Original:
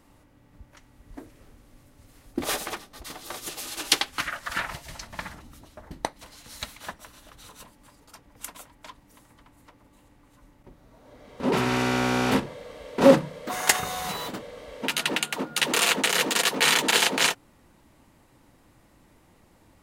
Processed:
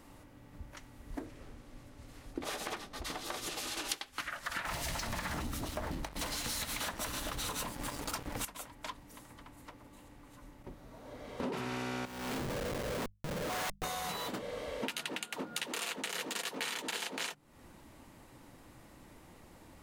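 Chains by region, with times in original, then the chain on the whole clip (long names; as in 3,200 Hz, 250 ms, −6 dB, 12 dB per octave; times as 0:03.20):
0:01.19–0:03.89: downward compressor 2 to 1, threshold −35 dBFS + high-shelf EQ 9,700 Hz −11.5 dB
0:04.65–0:08.45: downward compressor, threshold −41 dBFS + leveller curve on the samples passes 5
0:12.05–0:13.84: gate with flip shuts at −8 dBFS, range −37 dB + downward compressor 2 to 1, threshold −37 dBFS + comparator with hysteresis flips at −41.5 dBFS
whole clip: mains-hum notches 50/100/150/200 Hz; downward compressor 16 to 1, threshold −37 dBFS; level +2.5 dB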